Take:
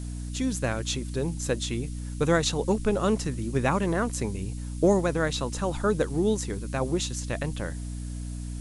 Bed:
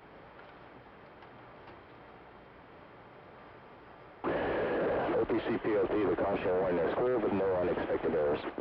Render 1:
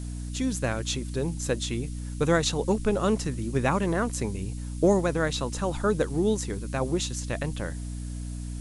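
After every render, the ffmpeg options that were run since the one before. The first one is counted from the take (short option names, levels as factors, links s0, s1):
-af anull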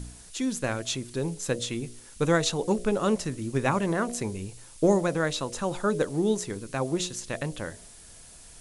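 -af "bandreject=f=60:t=h:w=4,bandreject=f=120:t=h:w=4,bandreject=f=180:t=h:w=4,bandreject=f=240:t=h:w=4,bandreject=f=300:t=h:w=4,bandreject=f=360:t=h:w=4,bandreject=f=420:t=h:w=4,bandreject=f=480:t=h:w=4,bandreject=f=540:t=h:w=4,bandreject=f=600:t=h:w=4,bandreject=f=660:t=h:w=4,bandreject=f=720:t=h:w=4"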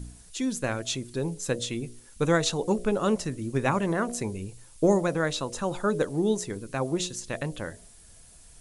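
-af "afftdn=nr=6:nf=-49"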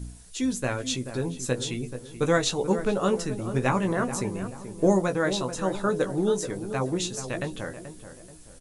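-filter_complex "[0:a]asplit=2[s0][s1];[s1]adelay=16,volume=0.447[s2];[s0][s2]amix=inputs=2:normalize=0,asplit=2[s3][s4];[s4]adelay=432,lowpass=f=1400:p=1,volume=0.316,asplit=2[s5][s6];[s6]adelay=432,lowpass=f=1400:p=1,volume=0.42,asplit=2[s7][s8];[s8]adelay=432,lowpass=f=1400:p=1,volume=0.42,asplit=2[s9][s10];[s10]adelay=432,lowpass=f=1400:p=1,volume=0.42[s11];[s5][s7][s9][s11]amix=inputs=4:normalize=0[s12];[s3][s12]amix=inputs=2:normalize=0"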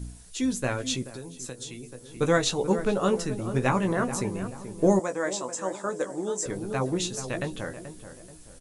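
-filter_complex "[0:a]asettb=1/sr,asplit=3[s0][s1][s2];[s0]atrim=end=1.024[s3];[s1]atrim=start=1.02:end=2.17,asetpts=PTS-STARTPTS,afade=t=in:d=0.004:c=qsin,afade=t=out:st=1.146:d=0.004:c=qsin,acrossover=split=250|4700[s4][s5][s6];[s4]acompressor=threshold=0.00501:ratio=4[s7];[s5]acompressor=threshold=0.00794:ratio=4[s8];[s6]acompressor=threshold=0.0126:ratio=4[s9];[s7][s8][s9]amix=inputs=3:normalize=0[s10];[s2]atrim=start=2.166[s11];[s3][s10]acrossfade=d=0.004:c1=hsin:c2=qsin[s12];[s12][s11]acrossfade=d=0.004:c1=qsin:c2=hsin,asettb=1/sr,asplit=3[s13][s14][s15];[s13]atrim=end=4.994[s16];[s14]atrim=start=4.99:end=6.46,asetpts=PTS-STARTPTS,afade=t=in:d=0.004:c=qsin,afade=t=out:st=1.466:d=0.004:c=qsin,highpass=350,equalizer=f=420:t=q:w=4:g=-5,equalizer=f=760:t=q:w=4:g=-3,equalizer=f=1400:t=q:w=4:g=-6,equalizer=f=2700:t=q:w=4:g=-7,equalizer=f=3900:t=q:w=4:g=-10,equalizer=f=7700:t=q:w=4:g=9,lowpass=f=9000:w=0.5412,lowpass=f=9000:w=1.3066[s17];[s15]atrim=start=6.456[s18];[s16][s17]acrossfade=d=0.004:c1=hsin:c2=qsin[s19];[s19][s18]acrossfade=d=0.004:c1=qsin:c2=hsin"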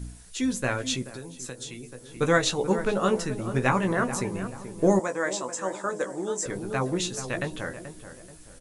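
-af "equalizer=f=1700:t=o:w=1.3:g=4,bandreject=f=104.4:t=h:w=4,bandreject=f=208.8:t=h:w=4,bandreject=f=313.2:t=h:w=4,bandreject=f=417.6:t=h:w=4,bandreject=f=522:t=h:w=4,bandreject=f=626.4:t=h:w=4,bandreject=f=730.8:t=h:w=4,bandreject=f=835.2:t=h:w=4,bandreject=f=939.6:t=h:w=4,bandreject=f=1044:t=h:w=4"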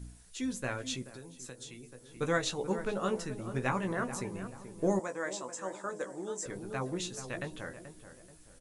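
-af "volume=0.376"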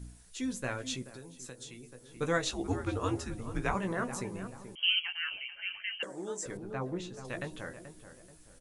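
-filter_complex "[0:a]asettb=1/sr,asplit=3[s0][s1][s2];[s0]atrim=end=2.514[s3];[s1]atrim=start=2.51:end=3.75,asetpts=PTS-STARTPTS,afade=t=in:d=0.004:c=qsin,afade=t=out:st=1.236:d=0.004:c=qsin,afreqshift=-100[s4];[s2]atrim=start=3.746[s5];[s3][s4]acrossfade=d=0.004:c1=hsin:c2=qsin[s6];[s6][s5]acrossfade=d=0.004:c1=qsin:c2=hsin,asettb=1/sr,asplit=3[s7][s8][s9];[s7]atrim=end=4.754[s10];[s8]atrim=start=4.75:end=6.03,asetpts=PTS-STARTPTS,afade=t=in:d=0.004:c=qsin,afade=t=out:st=1.276:d=0.004:c=qsin,lowpass=f=2800:t=q:w=0.5098,lowpass=f=2800:t=q:w=0.6013,lowpass=f=2800:t=q:w=0.9,lowpass=f=2800:t=q:w=2.563,afreqshift=-3300[s11];[s9]atrim=start=6.026[s12];[s10][s11]acrossfade=d=0.004:c1=hsin:c2=qsin[s13];[s13][s12]acrossfade=d=0.004:c1=qsin:c2=hsin,asettb=1/sr,asplit=3[s14][s15][s16];[s14]atrim=end=6.574[s17];[s15]atrim=start=6.57:end=7.25,asetpts=PTS-STARTPTS,afade=t=in:d=0.004:c=qsin,afade=t=out:st=0.676:d=0.004:c=qsin,lowpass=f=1700:p=1[s18];[s16]atrim=start=7.246[s19];[s17][s18]acrossfade=d=0.004:c1=hsin:c2=qsin[s20];[s20][s19]acrossfade=d=0.004:c1=qsin:c2=hsin"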